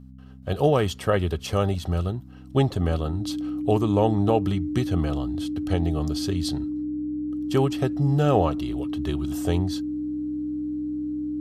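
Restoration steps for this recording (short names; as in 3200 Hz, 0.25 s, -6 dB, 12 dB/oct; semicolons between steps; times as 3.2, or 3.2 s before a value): de-hum 64.7 Hz, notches 4; notch 300 Hz, Q 30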